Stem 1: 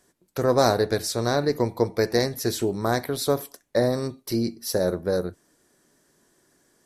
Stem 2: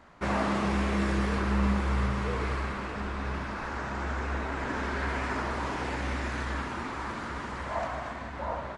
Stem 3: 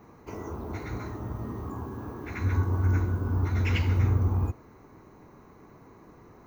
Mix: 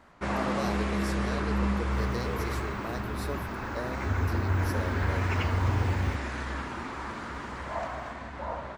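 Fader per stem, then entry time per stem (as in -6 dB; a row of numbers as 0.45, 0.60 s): -15.5, -1.5, -3.5 dB; 0.00, 0.00, 1.65 s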